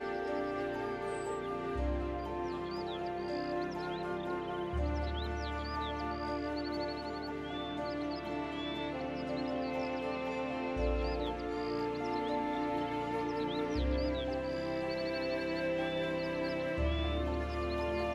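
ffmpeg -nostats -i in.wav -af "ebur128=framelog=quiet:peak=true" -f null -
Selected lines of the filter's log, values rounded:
Integrated loudness:
  I:         -36.4 LUFS
  Threshold: -46.4 LUFS
Loudness range:
  LRA:         2.8 LU
  Threshold: -56.5 LUFS
  LRA low:   -38.0 LUFS
  LRA high:  -35.1 LUFS
True peak:
  Peak:      -20.8 dBFS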